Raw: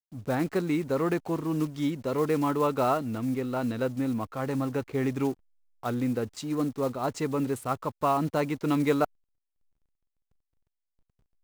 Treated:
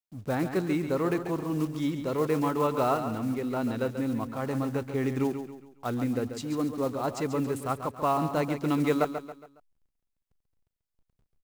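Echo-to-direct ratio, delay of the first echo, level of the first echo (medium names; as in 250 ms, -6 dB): -8.0 dB, 138 ms, -9.0 dB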